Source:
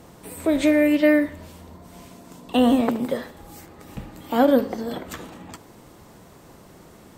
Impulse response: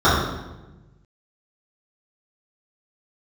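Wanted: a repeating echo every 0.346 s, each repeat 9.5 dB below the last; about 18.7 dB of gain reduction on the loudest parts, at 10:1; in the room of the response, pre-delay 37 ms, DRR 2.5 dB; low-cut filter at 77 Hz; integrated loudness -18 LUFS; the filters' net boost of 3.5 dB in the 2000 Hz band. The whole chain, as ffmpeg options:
-filter_complex "[0:a]highpass=77,equalizer=f=2k:t=o:g=4,acompressor=threshold=-32dB:ratio=10,aecho=1:1:346|692|1038|1384:0.335|0.111|0.0365|0.012,asplit=2[a][b];[1:a]atrim=start_sample=2205,adelay=37[c];[b][c]afir=irnorm=-1:irlink=0,volume=-28dB[d];[a][d]amix=inputs=2:normalize=0,volume=17.5dB"

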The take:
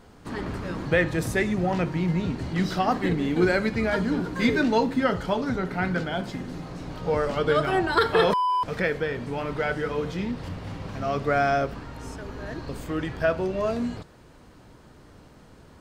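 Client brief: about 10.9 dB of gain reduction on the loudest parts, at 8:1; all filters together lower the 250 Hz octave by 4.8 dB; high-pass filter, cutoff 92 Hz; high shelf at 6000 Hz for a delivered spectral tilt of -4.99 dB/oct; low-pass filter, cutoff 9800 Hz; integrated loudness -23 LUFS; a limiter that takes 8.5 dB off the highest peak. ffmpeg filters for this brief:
-af "highpass=92,lowpass=9.8k,equalizer=f=250:t=o:g=-6.5,highshelf=f=6k:g=-8,acompressor=threshold=-29dB:ratio=8,volume=13dB,alimiter=limit=-13.5dB:level=0:latency=1"

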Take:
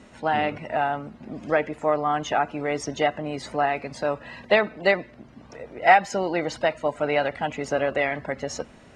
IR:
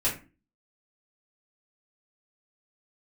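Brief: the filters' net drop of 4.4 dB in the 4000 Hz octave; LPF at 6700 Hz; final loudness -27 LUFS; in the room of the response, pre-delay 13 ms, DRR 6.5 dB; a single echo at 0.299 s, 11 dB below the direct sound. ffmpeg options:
-filter_complex "[0:a]lowpass=6.7k,equalizer=f=4k:t=o:g=-6.5,aecho=1:1:299:0.282,asplit=2[a][b];[1:a]atrim=start_sample=2205,adelay=13[c];[b][c]afir=irnorm=-1:irlink=0,volume=-15.5dB[d];[a][d]amix=inputs=2:normalize=0,volume=-3dB"

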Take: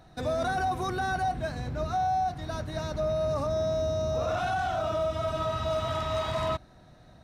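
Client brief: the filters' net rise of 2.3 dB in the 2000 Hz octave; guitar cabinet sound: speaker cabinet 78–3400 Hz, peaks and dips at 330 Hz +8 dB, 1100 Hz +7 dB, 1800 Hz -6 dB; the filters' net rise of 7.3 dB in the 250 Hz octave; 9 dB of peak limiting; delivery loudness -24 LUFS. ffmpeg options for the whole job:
-af "equalizer=f=250:t=o:g=5.5,equalizer=f=2k:t=o:g=5.5,alimiter=level_in=3dB:limit=-24dB:level=0:latency=1,volume=-3dB,highpass=78,equalizer=f=330:t=q:w=4:g=8,equalizer=f=1.1k:t=q:w=4:g=7,equalizer=f=1.8k:t=q:w=4:g=-6,lowpass=f=3.4k:w=0.5412,lowpass=f=3.4k:w=1.3066,volume=9.5dB"

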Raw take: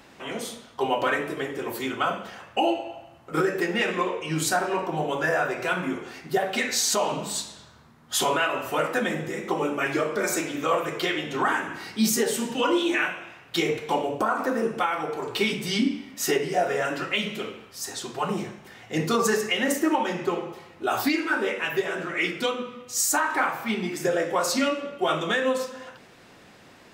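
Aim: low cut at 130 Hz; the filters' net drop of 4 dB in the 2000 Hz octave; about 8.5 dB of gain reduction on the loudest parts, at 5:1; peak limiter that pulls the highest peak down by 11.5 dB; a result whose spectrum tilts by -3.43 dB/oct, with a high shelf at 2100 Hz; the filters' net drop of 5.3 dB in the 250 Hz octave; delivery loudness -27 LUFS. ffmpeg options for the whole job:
-af "highpass=130,equalizer=f=250:t=o:g=-7,equalizer=f=2k:t=o:g=-8.5,highshelf=f=2.1k:g=5.5,acompressor=threshold=-26dB:ratio=5,volume=7.5dB,alimiter=limit=-18dB:level=0:latency=1"

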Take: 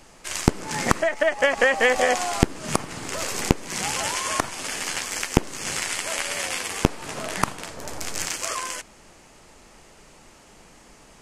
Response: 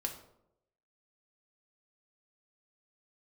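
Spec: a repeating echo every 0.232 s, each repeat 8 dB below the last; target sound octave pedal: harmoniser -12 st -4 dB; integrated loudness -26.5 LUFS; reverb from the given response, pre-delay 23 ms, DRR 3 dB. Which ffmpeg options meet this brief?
-filter_complex "[0:a]aecho=1:1:232|464|696|928|1160:0.398|0.159|0.0637|0.0255|0.0102,asplit=2[a][b];[1:a]atrim=start_sample=2205,adelay=23[c];[b][c]afir=irnorm=-1:irlink=0,volume=-4dB[d];[a][d]amix=inputs=2:normalize=0,asplit=2[e][f];[f]asetrate=22050,aresample=44100,atempo=2,volume=-4dB[g];[e][g]amix=inputs=2:normalize=0,volume=-5dB"

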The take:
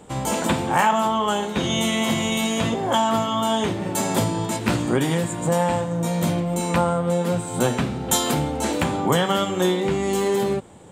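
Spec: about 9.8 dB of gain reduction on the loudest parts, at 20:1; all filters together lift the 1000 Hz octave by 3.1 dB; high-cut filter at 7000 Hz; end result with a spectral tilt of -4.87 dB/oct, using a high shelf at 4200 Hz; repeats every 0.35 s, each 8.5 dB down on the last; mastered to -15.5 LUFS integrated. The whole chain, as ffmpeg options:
-af "lowpass=7k,equalizer=f=1k:t=o:g=4,highshelf=f=4.2k:g=-5,acompressor=threshold=-21dB:ratio=20,aecho=1:1:350|700|1050|1400:0.376|0.143|0.0543|0.0206,volume=10dB"

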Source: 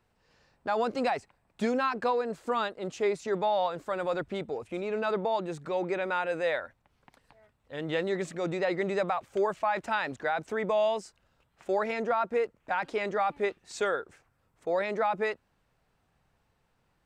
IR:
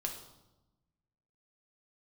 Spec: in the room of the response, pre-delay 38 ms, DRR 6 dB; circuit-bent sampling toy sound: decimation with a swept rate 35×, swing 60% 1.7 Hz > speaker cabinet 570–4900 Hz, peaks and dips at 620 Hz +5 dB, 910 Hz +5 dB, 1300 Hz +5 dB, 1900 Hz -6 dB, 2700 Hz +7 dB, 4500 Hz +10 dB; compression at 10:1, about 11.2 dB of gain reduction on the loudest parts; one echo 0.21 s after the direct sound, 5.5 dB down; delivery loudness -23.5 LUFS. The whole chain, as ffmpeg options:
-filter_complex "[0:a]acompressor=threshold=-35dB:ratio=10,aecho=1:1:210:0.531,asplit=2[a][b];[1:a]atrim=start_sample=2205,adelay=38[c];[b][c]afir=irnorm=-1:irlink=0,volume=-7dB[d];[a][d]amix=inputs=2:normalize=0,acrusher=samples=35:mix=1:aa=0.000001:lfo=1:lforange=21:lforate=1.7,highpass=570,equalizer=f=620:t=q:w=4:g=5,equalizer=f=910:t=q:w=4:g=5,equalizer=f=1.3k:t=q:w=4:g=5,equalizer=f=1.9k:t=q:w=4:g=-6,equalizer=f=2.7k:t=q:w=4:g=7,equalizer=f=4.5k:t=q:w=4:g=10,lowpass=f=4.9k:w=0.5412,lowpass=f=4.9k:w=1.3066,volume=14.5dB"

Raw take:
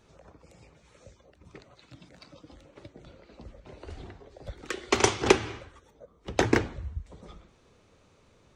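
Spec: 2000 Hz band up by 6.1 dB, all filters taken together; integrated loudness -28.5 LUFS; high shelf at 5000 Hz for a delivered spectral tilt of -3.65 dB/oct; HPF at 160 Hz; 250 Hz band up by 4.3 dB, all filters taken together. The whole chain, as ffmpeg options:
-af "highpass=160,equalizer=f=250:t=o:g=6.5,equalizer=f=2k:t=o:g=8,highshelf=f=5k:g=-4.5,volume=-5dB"

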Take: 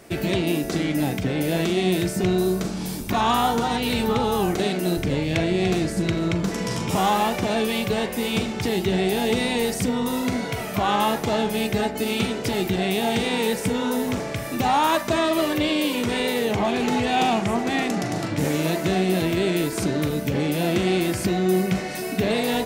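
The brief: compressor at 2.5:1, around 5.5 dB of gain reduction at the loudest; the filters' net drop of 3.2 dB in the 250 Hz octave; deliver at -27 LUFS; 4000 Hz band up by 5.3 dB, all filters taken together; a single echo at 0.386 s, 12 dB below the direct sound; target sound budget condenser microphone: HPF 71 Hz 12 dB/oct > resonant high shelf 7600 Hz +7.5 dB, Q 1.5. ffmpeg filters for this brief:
-af "equalizer=f=250:t=o:g=-4.5,equalizer=f=4k:t=o:g=8,acompressor=threshold=-24dB:ratio=2.5,highpass=71,highshelf=f=7.6k:t=q:w=1.5:g=7.5,aecho=1:1:386:0.251,volume=-1.5dB"

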